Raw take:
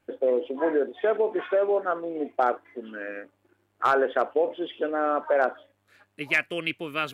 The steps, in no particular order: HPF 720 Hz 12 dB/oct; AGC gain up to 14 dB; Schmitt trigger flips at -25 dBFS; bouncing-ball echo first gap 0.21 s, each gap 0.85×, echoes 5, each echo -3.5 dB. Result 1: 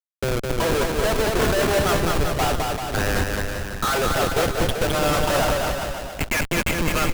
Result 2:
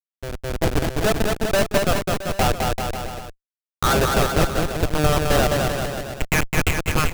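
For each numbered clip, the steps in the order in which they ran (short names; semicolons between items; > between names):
AGC > HPF > Schmitt trigger > bouncing-ball echo; HPF > Schmitt trigger > bouncing-ball echo > AGC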